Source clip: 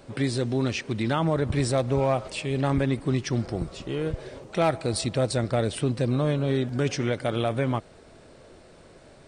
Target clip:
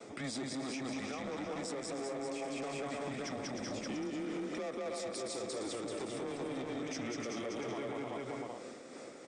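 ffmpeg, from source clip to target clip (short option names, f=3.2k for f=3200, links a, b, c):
-filter_complex "[0:a]tremolo=f=3:d=0.64,agate=range=-33dB:threshold=-53dB:ratio=3:detection=peak,asplit=2[a][b];[b]aecho=0:1:190|304|372.4|413.4|438.1:0.631|0.398|0.251|0.158|0.1[c];[a][c]amix=inputs=2:normalize=0,asoftclip=type=tanh:threshold=-26dB,highpass=f=430:w=0.5412,highpass=f=430:w=1.3066,equalizer=f=550:t=q:w=4:g=-5,equalizer=f=1.1k:t=q:w=4:g=-8,equalizer=f=1.7k:t=q:w=4:g=-8,equalizer=f=3k:t=q:w=4:g=-9,equalizer=f=4.3k:t=q:w=4:g=-10,lowpass=f=8k:w=0.5412,lowpass=f=8k:w=1.3066,afreqshift=-130,asplit=2[d][e];[e]aecho=0:1:385:0.531[f];[d][f]amix=inputs=2:normalize=0,acompressor=threshold=-43dB:ratio=6,alimiter=level_in=16dB:limit=-24dB:level=0:latency=1:release=18,volume=-16dB,volume=8.5dB"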